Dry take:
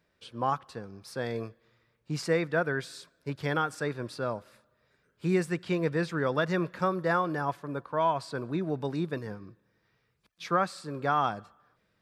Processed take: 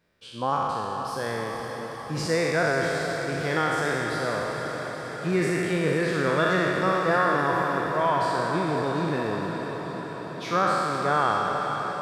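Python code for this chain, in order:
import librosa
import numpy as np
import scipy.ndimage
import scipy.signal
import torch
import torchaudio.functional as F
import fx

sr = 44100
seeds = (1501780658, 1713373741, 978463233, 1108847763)

y = fx.spec_trails(x, sr, decay_s=2.42)
y = fx.echo_diffused(y, sr, ms=483, feedback_pct=72, wet_db=-8.0)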